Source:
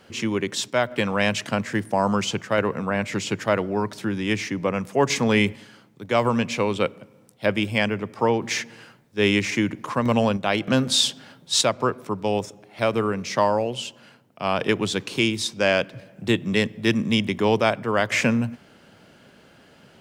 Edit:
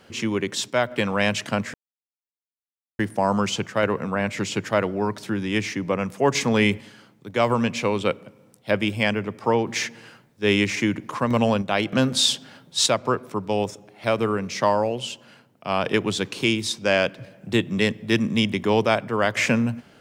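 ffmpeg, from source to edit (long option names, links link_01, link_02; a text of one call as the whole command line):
ffmpeg -i in.wav -filter_complex "[0:a]asplit=2[link_01][link_02];[link_01]atrim=end=1.74,asetpts=PTS-STARTPTS,afade=type=out:start_time=1.736:duration=0.004:curve=hsin,apad=pad_dur=1.25[link_03];[link_02]atrim=start=1.74,asetpts=PTS-STARTPTS,afade=type=in:duration=0.004:curve=hsin[link_04];[link_03][link_04]concat=n=2:v=0:a=1" out.wav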